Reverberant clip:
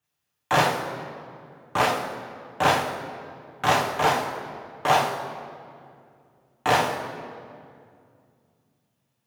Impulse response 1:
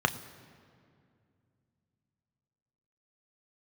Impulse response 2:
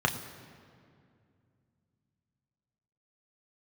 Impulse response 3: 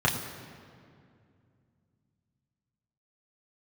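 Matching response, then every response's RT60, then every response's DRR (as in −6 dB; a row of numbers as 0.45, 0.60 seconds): 3; 2.3, 2.3, 2.3 seconds; 8.0, 2.5, −4.0 decibels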